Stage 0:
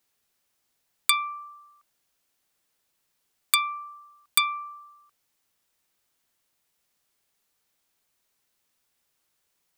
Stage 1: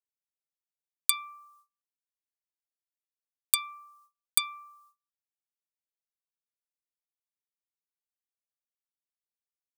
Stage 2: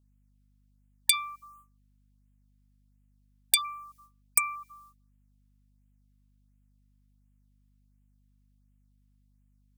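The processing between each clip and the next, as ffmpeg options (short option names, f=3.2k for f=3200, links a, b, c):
-af "agate=range=-28dB:threshold=-51dB:ratio=16:detection=peak,bass=f=250:g=-7,treble=f=4k:g=13,volume=-12dB"
-af "aeval=exprs='val(0)+0.000282*(sin(2*PI*50*n/s)+sin(2*PI*2*50*n/s)/2+sin(2*PI*3*50*n/s)/3+sin(2*PI*4*50*n/s)/4+sin(2*PI*5*50*n/s)/5)':c=same,asoftclip=type=hard:threshold=-16.5dB,afftfilt=real='re*(1-between(b*sr/1024,510*pow(4800/510,0.5+0.5*sin(2*PI*1.4*pts/sr))/1.41,510*pow(4800/510,0.5+0.5*sin(2*PI*1.4*pts/sr))*1.41))':imag='im*(1-between(b*sr/1024,510*pow(4800/510,0.5+0.5*sin(2*PI*1.4*pts/sr))/1.41,510*pow(4800/510,0.5+0.5*sin(2*PI*1.4*pts/sr))*1.41))':win_size=1024:overlap=0.75,volume=6dB"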